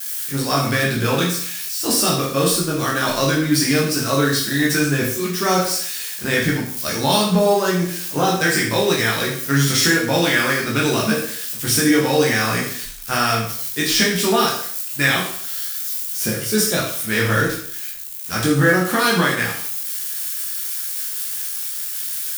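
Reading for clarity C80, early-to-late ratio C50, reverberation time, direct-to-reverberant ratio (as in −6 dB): 8.0 dB, 4.5 dB, 0.55 s, −4.5 dB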